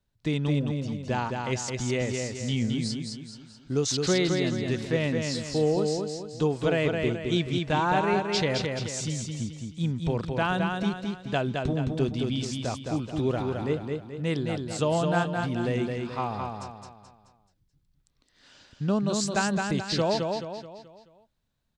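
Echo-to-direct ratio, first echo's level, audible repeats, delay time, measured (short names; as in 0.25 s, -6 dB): -3.0 dB, -4.0 dB, 5, 0.215 s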